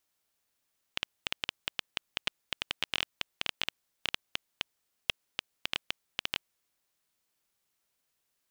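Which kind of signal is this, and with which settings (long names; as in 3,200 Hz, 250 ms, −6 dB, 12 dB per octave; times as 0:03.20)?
Geiger counter clicks 8.5 per second −11 dBFS 5.42 s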